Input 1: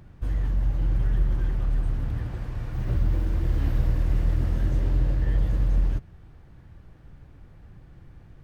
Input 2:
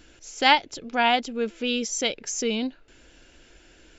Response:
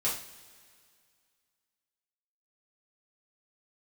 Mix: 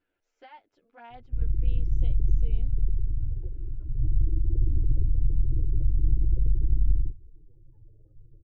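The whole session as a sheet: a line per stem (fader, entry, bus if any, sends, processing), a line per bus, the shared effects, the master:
-2.5 dB, 1.10 s, send -23.5 dB, octaver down 2 oct, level +2 dB; spectral gate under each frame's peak -25 dB strong; fixed phaser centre 1100 Hz, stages 8
-19.0 dB, 0.00 s, no send, low shelf 310 Hz -8.5 dB; limiter -13.5 dBFS, peak gain reduction 10.5 dB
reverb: on, pre-delay 3 ms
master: LPF 1800 Hz 12 dB/oct; envelope flanger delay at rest 10.9 ms, full sweep at -17.5 dBFS

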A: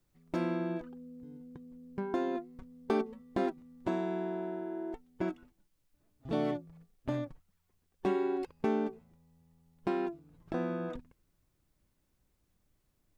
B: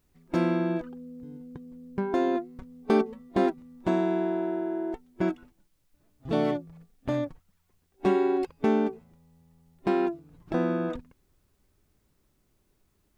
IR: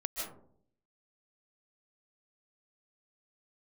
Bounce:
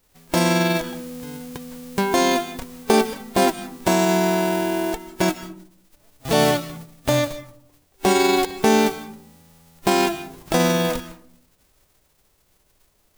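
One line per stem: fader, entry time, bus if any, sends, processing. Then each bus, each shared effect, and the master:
+0.5 dB, 0.00 s, no send, band shelf 670 Hz +13 dB
+1.5 dB, 0.00 s, send -10.5 dB, spectral whitening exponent 0.3; limiter -15.5 dBFS, peak gain reduction 8 dB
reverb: on, RT60 0.60 s, pre-delay 0.11 s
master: low shelf 180 Hz +6.5 dB

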